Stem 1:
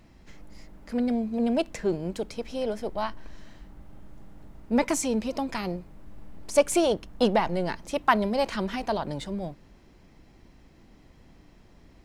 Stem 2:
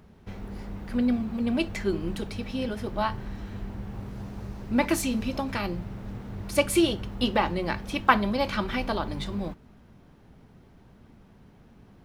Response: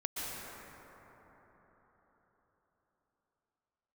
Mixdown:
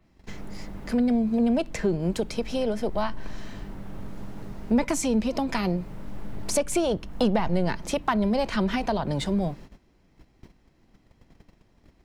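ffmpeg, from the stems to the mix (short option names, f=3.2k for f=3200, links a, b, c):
-filter_complex "[0:a]acontrast=80,adynamicequalizer=threshold=0.01:dfrequency=5500:dqfactor=0.7:tfrequency=5500:tqfactor=0.7:attack=5:release=100:ratio=0.375:range=2.5:mode=cutabove:tftype=highshelf,volume=1.5dB,asplit=2[a][b];[1:a]volume=-3dB[c];[b]apad=whole_len=531276[d];[c][d]sidechaincompress=threshold=-20dB:ratio=8:attack=16:release=1130[e];[a][e]amix=inputs=2:normalize=0,agate=range=-16dB:threshold=-41dB:ratio=16:detection=peak,acrossover=split=180[f][g];[g]acompressor=threshold=-26dB:ratio=3[h];[f][h]amix=inputs=2:normalize=0"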